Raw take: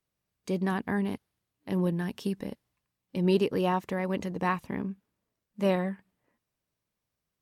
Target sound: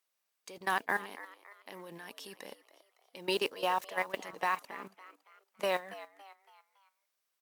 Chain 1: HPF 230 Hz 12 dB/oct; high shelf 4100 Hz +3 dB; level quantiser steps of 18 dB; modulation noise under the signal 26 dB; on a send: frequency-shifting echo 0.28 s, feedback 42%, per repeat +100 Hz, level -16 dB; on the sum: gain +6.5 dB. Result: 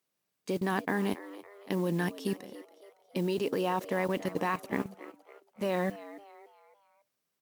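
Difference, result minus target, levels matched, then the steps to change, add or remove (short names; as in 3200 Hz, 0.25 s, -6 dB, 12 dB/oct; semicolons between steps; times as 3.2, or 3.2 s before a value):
250 Hz band +11.5 dB
change: HPF 710 Hz 12 dB/oct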